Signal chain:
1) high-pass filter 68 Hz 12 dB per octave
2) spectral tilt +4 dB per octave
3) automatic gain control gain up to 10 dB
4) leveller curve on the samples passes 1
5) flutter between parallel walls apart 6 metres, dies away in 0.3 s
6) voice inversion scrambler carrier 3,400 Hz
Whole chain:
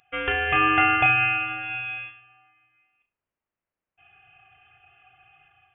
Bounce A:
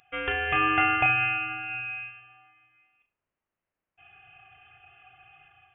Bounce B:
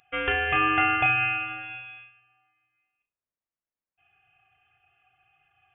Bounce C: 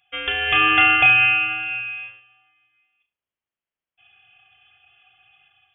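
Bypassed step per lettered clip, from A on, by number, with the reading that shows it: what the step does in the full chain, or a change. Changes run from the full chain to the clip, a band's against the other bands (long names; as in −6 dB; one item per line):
4, change in integrated loudness −3.5 LU
3, 500 Hz band +1.5 dB
2, 2 kHz band +7.5 dB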